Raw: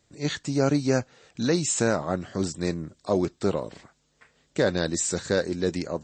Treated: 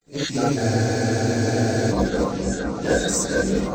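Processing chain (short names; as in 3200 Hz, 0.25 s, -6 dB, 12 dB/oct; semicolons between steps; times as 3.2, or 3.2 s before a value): bin magnitudes rounded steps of 30 dB; gate with hold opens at -59 dBFS; low shelf 400 Hz -4.5 dB; in parallel at -1 dB: limiter -20.5 dBFS, peak gain reduction 8.5 dB; on the sum: granular stretch 0.62×, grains 21 ms; added harmonics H 6 -31 dB, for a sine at -10 dBFS; companded quantiser 8-bit; on a send: repeats that get brighter 0.468 s, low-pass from 400 Hz, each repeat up 2 oct, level -3 dB; on the sum: non-linear reverb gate 90 ms rising, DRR -7 dB; spectral freeze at 0.61, 1.31 s; gain -5.5 dB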